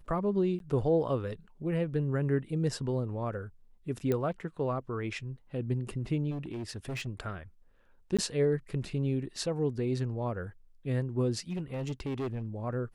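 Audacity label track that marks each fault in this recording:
0.590000	0.600000	gap 12 ms
4.120000	4.120000	pop -18 dBFS
6.300000	7.080000	clipped -33 dBFS
8.170000	8.190000	gap 16 ms
11.500000	12.460000	clipped -30 dBFS

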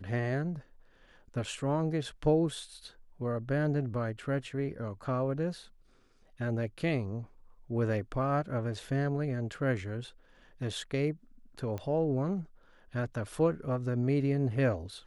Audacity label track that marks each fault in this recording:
11.780000	11.780000	pop -25 dBFS

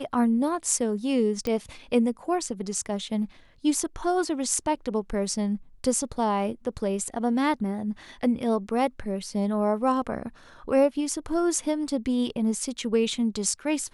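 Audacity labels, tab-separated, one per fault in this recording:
1.470000	1.470000	pop -15 dBFS

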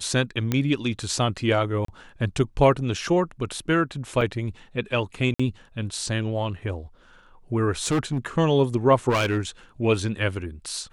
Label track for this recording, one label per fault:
0.520000	0.520000	pop -10 dBFS
1.850000	1.880000	gap 33 ms
4.210000	4.210000	gap 4.5 ms
5.340000	5.390000	gap 55 ms
7.860000	8.180000	clipped -19 dBFS
9.090000	9.390000	clipped -18.5 dBFS

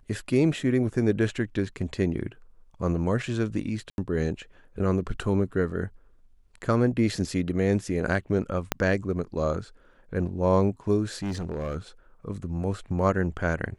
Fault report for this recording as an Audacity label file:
3.900000	3.980000	gap 81 ms
8.720000	8.720000	pop -7 dBFS
11.220000	11.770000	clipped -26.5 dBFS

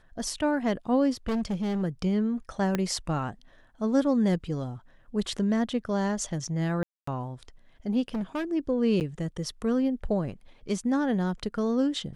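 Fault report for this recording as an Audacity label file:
1.280000	1.830000	clipped -25 dBFS
2.750000	2.750000	pop -13 dBFS
6.830000	7.070000	gap 0.244 s
8.080000	8.450000	clipped -27 dBFS
9.000000	9.010000	gap 9 ms

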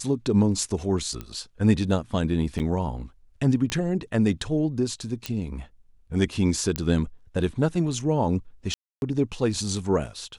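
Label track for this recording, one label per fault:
1.210000	1.210000	pop -20 dBFS
2.590000	2.600000	gap 8.6 ms
3.700000	3.700000	pop -13 dBFS
5.260000	5.260000	pop -13 dBFS
6.760000	6.760000	pop -10 dBFS
8.740000	9.020000	gap 0.281 s

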